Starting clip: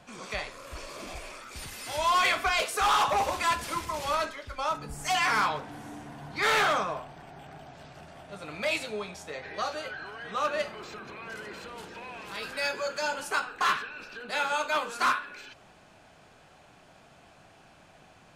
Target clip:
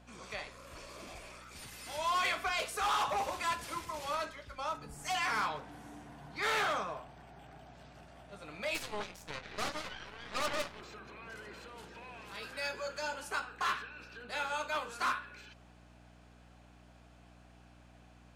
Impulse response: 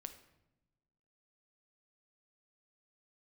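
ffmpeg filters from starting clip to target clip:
-filter_complex "[0:a]asplit=3[s0][s1][s2];[s0]afade=t=out:st=8.74:d=0.02[s3];[s1]aeval=exprs='0.133*(cos(1*acos(clip(val(0)/0.133,-1,1)))-cos(1*PI/2))+0.0075*(cos(7*acos(clip(val(0)/0.133,-1,1)))-cos(7*PI/2))+0.0422*(cos(8*acos(clip(val(0)/0.133,-1,1)))-cos(8*PI/2))':c=same,afade=t=in:st=8.74:d=0.02,afade=t=out:st=10.8:d=0.02[s4];[s2]afade=t=in:st=10.8:d=0.02[s5];[s3][s4][s5]amix=inputs=3:normalize=0,aeval=exprs='val(0)+0.00398*(sin(2*PI*60*n/s)+sin(2*PI*2*60*n/s)/2+sin(2*PI*3*60*n/s)/3+sin(2*PI*4*60*n/s)/4+sin(2*PI*5*60*n/s)/5)':c=same,lowshelf=f=71:g=-7,volume=0.422"

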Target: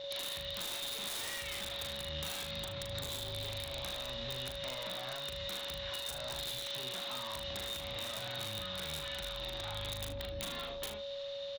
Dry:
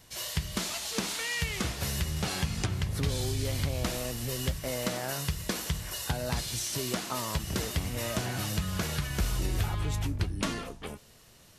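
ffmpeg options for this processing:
-filter_complex "[0:a]acrossover=split=420|2600[s0][s1][s2];[s0]acompressor=threshold=0.0282:ratio=4[s3];[s1]acompressor=threshold=0.0126:ratio=4[s4];[s2]acompressor=threshold=0.00355:ratio=4[s5];[s3][s4][s5]amix=inputs=3:normalize=0,aresample=16000,volume=53.1,asoftclip=hard,volume=0.0188,aresample=44100,lowpass=f=3700:t=q:w=14,lowshelf=f=620:t=q:w=1.5:g=-6.5,aeval=exprs='val(0)+0.00708*sin(2*PI*560*n/s)':c=same,aeval=exprs='(mod(21.1*val(0)+1,2)-1)/21.1':c=same,acompressor=threshold=0.0112:ratio=6,aecho=1:1:39|77:0.562|0.282"

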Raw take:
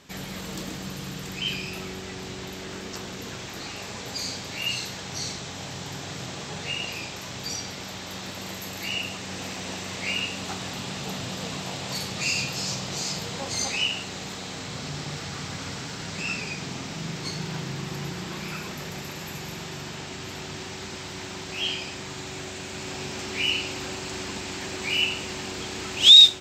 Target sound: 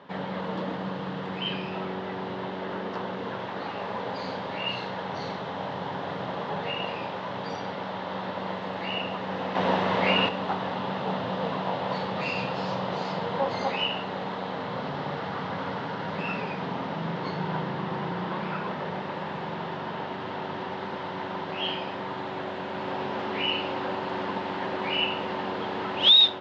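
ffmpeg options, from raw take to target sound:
-filter_complex "[0:a]highshelf=f=2500:g=-9.5,asettb=1/sr,asplit=3[s0][s1][s2];[s0]atrim=end=9.554[s3];[s1]atrim=start=9.55:end=10.29,asetpts=PTS-STARTPTS,afade=t=in:d=0.004:c=qsin,afade=t=out:st=0.736:d=0.004:c=qsin,acontrast=61[s4];[s2]atrim=start=10.286[s5];[s3][s4]acrossfade=d=0.004:c1=hsin:c2=qsin[s6];[s6][s5]acrossfade=d=0.004:c1=qsin:c2=hsin,highpass=f=130:w=0.5412,highpass=f=130:w=1.3066,equalizer=f=140:t=q:w=4:g=-9,equalizer=f=240:t=q:w=4:g=-4,equalizer=f=340:t=q:w=4:g=-6,equalizer=f=540:t=q:w=4:g=5,equalizer=f=940:t=q:w=4:g=7,equalizer=f=2400:t=q:w=4:g=-9,lowpass=f=3300:w=0.5412,lowpass=f=3300:w=1.3066,volume=2.11"

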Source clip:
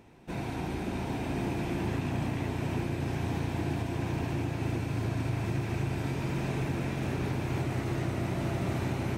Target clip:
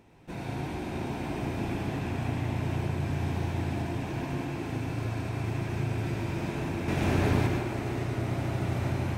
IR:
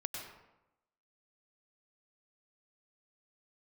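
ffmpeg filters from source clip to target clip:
-filter_complex "[0:a]asettb=1/sr,asplit=3[s0][s1][s2];[s0]atrim=end=6.884[s3];[s1]atrim=start=6.88:end=7.47,asetpts=PTS-STARTPTS,afade=t=in:d=0.004:c=qsin,afade=t=out:st=0.586:d=0.004:c=qsin,acontrast=82[s4];[s2]atrim=start=7.466[s5];[s3][s4]acrossfade=d=0.004:c1=hsin:c2=qsin[s6];[s6][s5]acrossfade=d=0.004:c1=qsin:c2=hsin[s7];[1:a]atrim=start_sample=2205[s8];[s7][s8]afir=irnorm=-1:irlink=0"

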